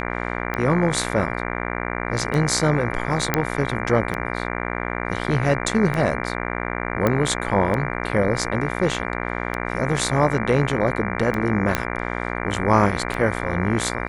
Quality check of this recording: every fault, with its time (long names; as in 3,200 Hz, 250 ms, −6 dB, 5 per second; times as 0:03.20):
mains buzz 60 Hz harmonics 39 −27 dBFS
scratch tick 33 1/3 rpm −13 dBFS
0:03.34: click −3 dBFS
0:07.07: click −7 dBFS
0:11.75: click −4 dBFS